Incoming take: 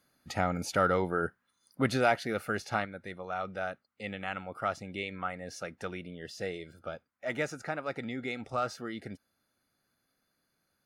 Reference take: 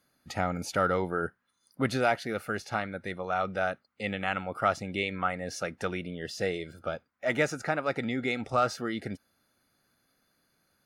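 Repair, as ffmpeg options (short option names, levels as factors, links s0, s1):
-af "asetnsamples=n=441:p=0,asendcmd='2.85 volume volume 6dB',volume=1"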